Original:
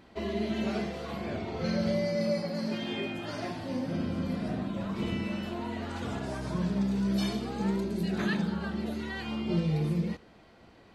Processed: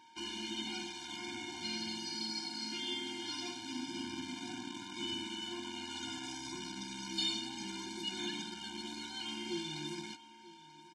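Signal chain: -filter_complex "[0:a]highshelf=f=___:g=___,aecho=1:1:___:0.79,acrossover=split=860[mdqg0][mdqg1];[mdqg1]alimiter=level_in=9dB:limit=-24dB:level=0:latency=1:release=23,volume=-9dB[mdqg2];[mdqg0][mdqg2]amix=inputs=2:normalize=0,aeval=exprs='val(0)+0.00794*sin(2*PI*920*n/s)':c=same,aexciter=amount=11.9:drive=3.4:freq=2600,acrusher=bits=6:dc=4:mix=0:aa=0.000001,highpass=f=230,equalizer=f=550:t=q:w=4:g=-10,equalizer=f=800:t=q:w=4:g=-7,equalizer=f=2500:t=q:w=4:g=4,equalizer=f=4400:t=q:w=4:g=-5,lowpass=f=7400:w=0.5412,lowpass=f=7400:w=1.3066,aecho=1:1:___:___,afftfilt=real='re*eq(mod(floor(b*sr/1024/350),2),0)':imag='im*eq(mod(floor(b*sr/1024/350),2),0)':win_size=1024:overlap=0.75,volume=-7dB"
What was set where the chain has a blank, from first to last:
3400, -10, 2.8, 937, 0.119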